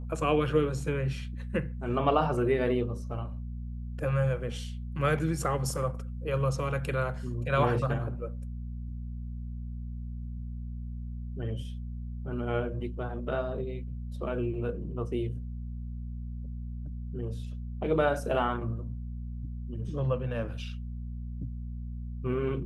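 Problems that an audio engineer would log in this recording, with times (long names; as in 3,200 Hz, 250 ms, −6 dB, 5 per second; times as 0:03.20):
mains hum 60 Hz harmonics 4 −37 dBFS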